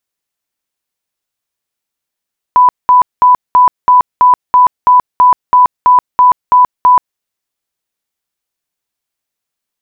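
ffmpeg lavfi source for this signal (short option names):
-f lavfi -i "aevalsrc='0.75*sin(2*PI*995*mod(t,0.33))*lt(mod(t,0.33),128/995)':d=4.62:s=44100"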